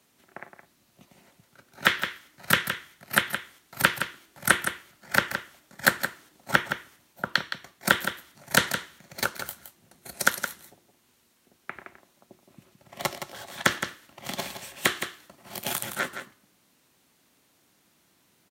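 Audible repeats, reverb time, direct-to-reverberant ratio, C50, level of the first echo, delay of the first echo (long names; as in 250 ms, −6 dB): 1, no reverb audible, no reverb audible, no reverb audible, −9.0 dB, 167 ms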